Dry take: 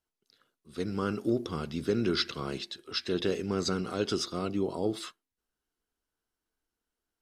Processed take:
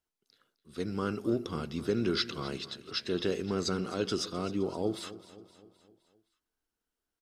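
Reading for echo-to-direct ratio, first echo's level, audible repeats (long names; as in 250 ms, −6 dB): −15.0 dB, −16.5 dB, 4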